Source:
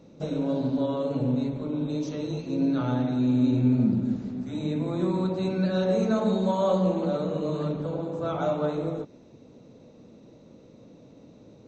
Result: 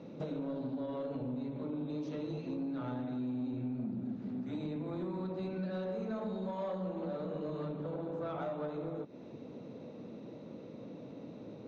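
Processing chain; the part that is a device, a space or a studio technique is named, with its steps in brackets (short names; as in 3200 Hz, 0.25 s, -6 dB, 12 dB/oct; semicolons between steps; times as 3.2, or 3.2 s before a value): AM radio (BPF 130–3400 Hz; compressor 5:1, threshold -40 dBFS, peak gain reduction 18.5 dB; soft clip -33.5 dBFS, distortion -21 dB); gain +4 dB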